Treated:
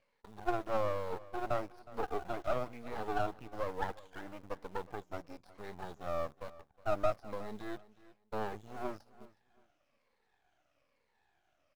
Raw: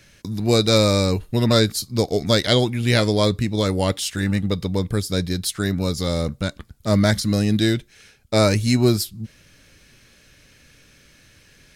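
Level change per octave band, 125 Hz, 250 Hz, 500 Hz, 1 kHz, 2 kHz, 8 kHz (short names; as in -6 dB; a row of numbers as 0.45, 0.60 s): -28.5 dB, -25.5 dB, -16.0 dB, -8.5 dB, -18.0 dB, under -30 dB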